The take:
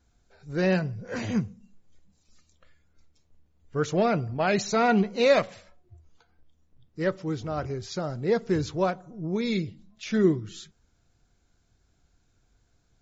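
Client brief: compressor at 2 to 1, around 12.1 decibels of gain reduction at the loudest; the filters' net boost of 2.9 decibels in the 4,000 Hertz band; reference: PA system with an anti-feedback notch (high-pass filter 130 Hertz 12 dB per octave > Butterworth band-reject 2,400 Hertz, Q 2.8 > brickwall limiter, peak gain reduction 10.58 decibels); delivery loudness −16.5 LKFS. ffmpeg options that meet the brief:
ffmpeg -i in.wav -af "equalizer=frequency=4000:width_type=o:gain=3.5,acompressor=threshold=-38dB:ratio=2,highpass=130,asuperstop=centerf=2400:order=8:qfactor=2.8,volume=25dB,alimiter=limit=-6.5dB:level=0:latency=1" out.wav

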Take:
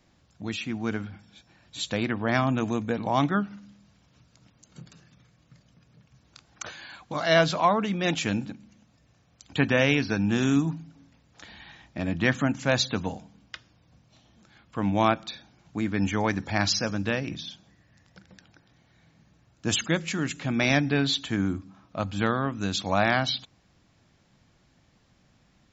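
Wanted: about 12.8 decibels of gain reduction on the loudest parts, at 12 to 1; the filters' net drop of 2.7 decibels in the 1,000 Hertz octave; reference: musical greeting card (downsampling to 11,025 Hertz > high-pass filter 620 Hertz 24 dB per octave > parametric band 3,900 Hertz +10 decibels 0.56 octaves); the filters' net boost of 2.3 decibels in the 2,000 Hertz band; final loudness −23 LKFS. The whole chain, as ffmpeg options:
ffmpeg -i in.wav -af "equalizer=frequency=1000:width_type=o:gain=-4,equalizer=frequency=2000:width_type=o:gain=3,acompressor=threshold=-29dB:ratio=12,aresample=11025,aresample=44100,highpass=frequency=620:width=0.5412,highpass=frequency=620:width=1.3066,equalizer=frequency=3900:width_type=o:width=0.56:gain=10,volume=11dB" out.wav

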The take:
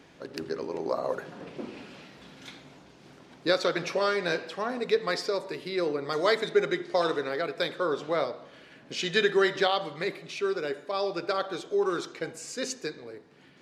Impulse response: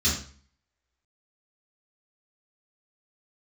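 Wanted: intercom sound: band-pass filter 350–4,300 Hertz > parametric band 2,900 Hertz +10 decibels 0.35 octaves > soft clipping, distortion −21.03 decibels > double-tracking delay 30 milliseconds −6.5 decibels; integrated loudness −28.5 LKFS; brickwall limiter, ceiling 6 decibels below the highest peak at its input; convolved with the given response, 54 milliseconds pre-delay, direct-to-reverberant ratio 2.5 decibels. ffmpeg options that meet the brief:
-filter_complex "[0:a]alimiter=limit=-18dB:level=0:latency=1,asplit=2[link_01][link_02];[1:a]atrim=start_sample=2205,adelay=54[link_03];[link_02][link_03]afir=irnorm=-1:irlink=0,volume=-13.5dB[link_04];[link_01][link_04]amix=inputs=2:normalize=0,highpass=350,lowpass=4300,equalizer=frequency=2900:width_type=o:width=0.35:gain=10,asoftclip=threshold=-17.5dB,asplit=2[link_05][link_06];[link_06]adelay=30,volume=-6.5dB[link_07];[link_05][link_07]amix=inputs=2:normalize=0"

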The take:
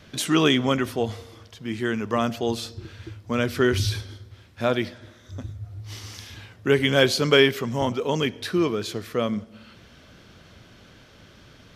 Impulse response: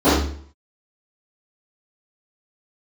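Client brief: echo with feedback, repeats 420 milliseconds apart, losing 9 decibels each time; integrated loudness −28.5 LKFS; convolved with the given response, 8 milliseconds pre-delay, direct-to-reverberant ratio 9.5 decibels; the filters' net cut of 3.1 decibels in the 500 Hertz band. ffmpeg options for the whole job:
-filter_complex "[0:a]equalizer=frequency=500:width_type=o:gain=-4,aecho=1:1:420|840|1260|1680:0.355|0.124|0.0435|0.0152,asplit=2[link_01][link_02];[1:a]atrim=start_sample=2205,adelay=8[link_03];[link_02][link_03]afir=irnorm=-1:irlink=0,volume=-35dB[link_04];[link_01][link_04]amix=inputs=2:normalize=0,volume=-5dB"

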